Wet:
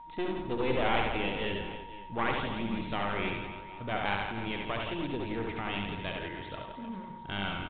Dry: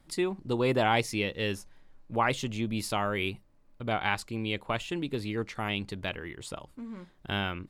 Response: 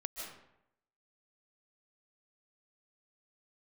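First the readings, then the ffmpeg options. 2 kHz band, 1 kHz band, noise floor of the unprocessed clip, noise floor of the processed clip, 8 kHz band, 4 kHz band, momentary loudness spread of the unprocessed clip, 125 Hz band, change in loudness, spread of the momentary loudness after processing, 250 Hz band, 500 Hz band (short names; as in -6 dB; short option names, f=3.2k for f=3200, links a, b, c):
-1.5 dB, -1.5 dB, -61 dBFS, -45 dBFS, under -35 dB, -2.5 dB, 15 LU, -4.0 dB, -3.0 dB, 12 LU, -2.0 dB, -2.5 dB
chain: -filter_complex "[0:a]aeval=exprs='clip(val(0),-1,0.0211)':c=same,asplit=2[a][b];[b]aecho=0:1:70|168|305.2|497.3|766.2:0.631|0.398|0.251|0.158|0.1[c];[a][c]amix=inputs=2:normalize=0,aeval=exprs='val(0)+0.00708*sin(2*PI*940*n/s)':c=same,asplit=2[d][e];[e]asplit=4[f][g][h][i];[f]adelay=90,afreqshift=-35,volume=-8.5dB[j];[g]adelay=180,afreqshift=-70,volume=-18.1dB[k];[h]adelay=270,afreqshift=-105,volume=-27.8dB[l];[i]adelay=360,afreqshift=-140,volume=-37.4dB[m];[j][k][l][m]amix=inputs=4:normalize=0[n];[d][n]amix=inputs=2:normalize=0,volume=-2.5dB" -ar 8000 -c:a pcm_alaw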